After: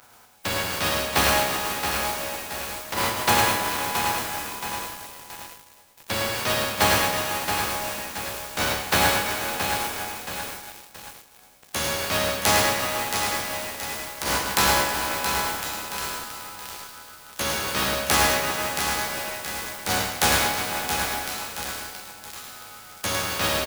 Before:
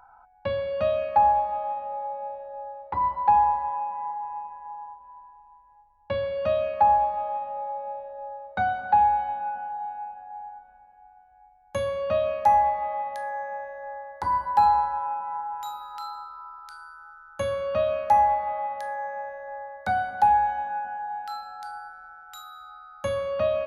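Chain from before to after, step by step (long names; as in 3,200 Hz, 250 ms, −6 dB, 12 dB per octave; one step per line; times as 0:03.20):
compressing power law on the bin magnitudes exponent 0.23
high-pass filter 44 Hz 6 dB per octave
in parallel at −1 dB: speech leveller within 3 dB 0.5 s
on the sum: flanger 0.31 Hz, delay 7.9 ms, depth 7.7 ms, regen +4%
on a send: single-tap delay 106 ms −6 dB
on the sum: feedback echo at a low word length 674 ms, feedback 55%, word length 5 bits, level −6 dB
level −2.5 dB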